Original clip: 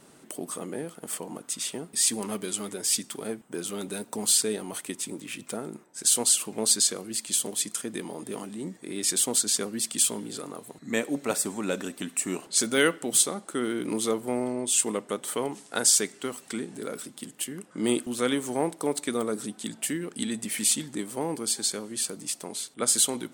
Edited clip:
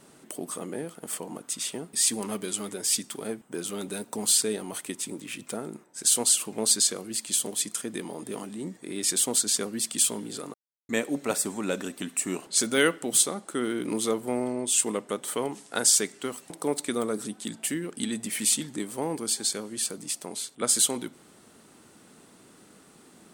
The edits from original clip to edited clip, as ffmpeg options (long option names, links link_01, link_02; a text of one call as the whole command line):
ffmpeg -i in.wav -filter_complex "[0:a]asplit=4[link_01][link_02][link_03][link_04];[link_01]atrim=end=10.54,asetpts=PTS-STARTPTS,afade=type=out:start_time=10.536:duration=0.004:curve=hsin[link_05];[link_02]atrim=start=10.54:end=10.89,asetpts=PTS-STARTPTS,volume=0[link_06];[link_03]atrim=start=10.89:end=16.502,asetpts=PTS-STARTPTS,afade=type=in:duration=0.004:curve=hsin[link_07];[link_04]atrim=start=18.688[link_08];[link_05][link_06][link_07]concat=n=3:v=0:a=1[link_09];[link_09][link_08]acrossfade=duration=0.004:curve1=hsin:curve2=hsin" out.wav